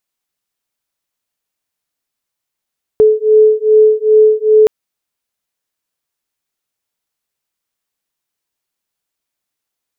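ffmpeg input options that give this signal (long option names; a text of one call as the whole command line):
ffmpeg -f lavfi -i "aevalsrc='0.355*(sin(2*PI*430*t)+sin(2*PI*432.5*t))':duration=1.67:sample_rate=44100" out.wav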